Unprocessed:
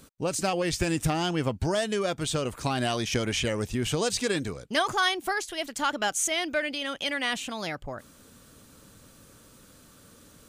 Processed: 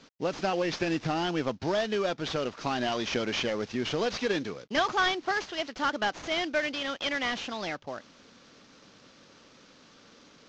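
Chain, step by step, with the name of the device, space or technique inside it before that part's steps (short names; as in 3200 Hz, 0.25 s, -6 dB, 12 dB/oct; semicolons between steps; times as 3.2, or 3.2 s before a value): early wireless headset (HPF 200 Hz 12 dB/oct; CVSD 32 kbps)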